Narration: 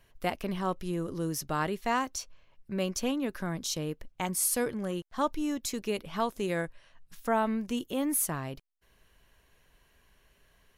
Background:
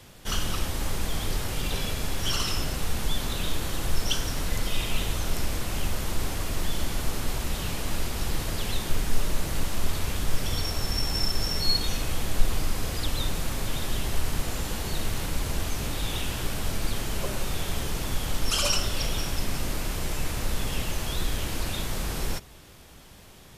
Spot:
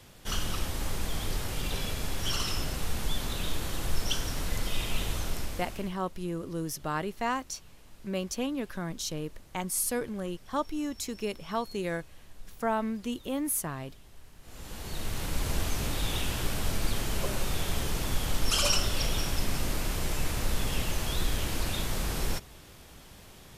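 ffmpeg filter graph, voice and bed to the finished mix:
ffmpeg -i stem1.wav -i stem2.wav -filter_complex "[0:a]adelay=5350,volume=-1.5dB[link_01];[1:a]volume=21dB,afade=type=out:start_time=5.18:duration=0.78:silence=0.0794328,afade=type=in:start_time=14.41:duration=1.11:silence=0.0595662[link_02];[link_01][link_02]amix=inputs=2:normalize=0" out.wav

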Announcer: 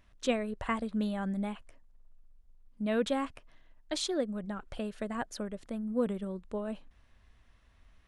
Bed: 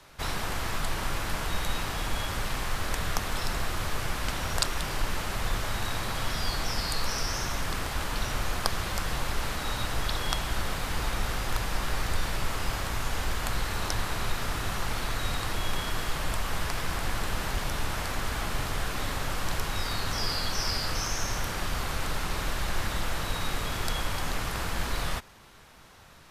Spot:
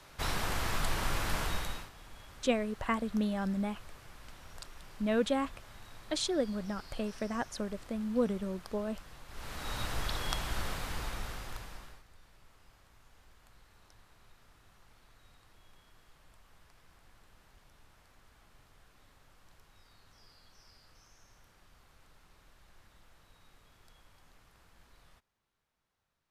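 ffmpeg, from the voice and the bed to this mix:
ffmpeg -i stem1.wav -i stem2.wav -filter_complex "[0:a]adelay=2200,volume=0.5dB[link_01];[1:a]volume=14dB,afade=type=out:start_time=1.41:duration=0.49:silence=0.105925,afade=type=in:start_time=9.28:duration=0.52:silence=0.158489,afade=type=out:start_time=10.65:duration=1.38:silence=0.0501187[link_02];[link_01][link_02]amix=inputs=2:normalize=0" out.wav

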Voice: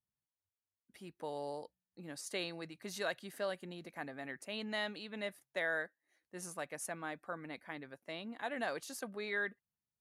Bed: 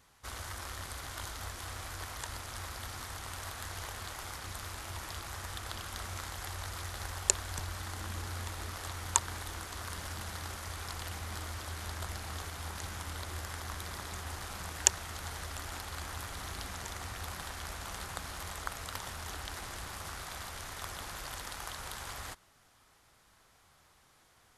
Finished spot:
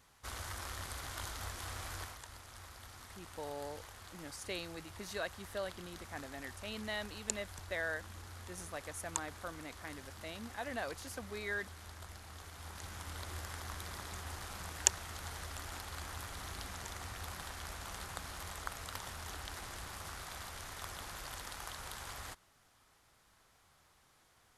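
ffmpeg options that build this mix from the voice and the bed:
ffmpeg -i stem1.wav -i stem2.wav -filter_complex "[0:a]adelay=2150,volume=-2dB[link_01];[1:a]volume=5.5dB,afade=type=out:start_time=1.98:duration=0.22:silence=0.354813,afade=type=in:start_time=12.37:duration=0.9:silence=0.446684[link_02];[link_01][link_02]amix=inputs=2:normalize=0" out.wav

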